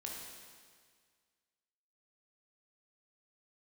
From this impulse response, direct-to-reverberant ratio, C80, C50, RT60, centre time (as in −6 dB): −2.0 dB, 2.5 dB, 0.5 dB, 1.8 s, 88 ms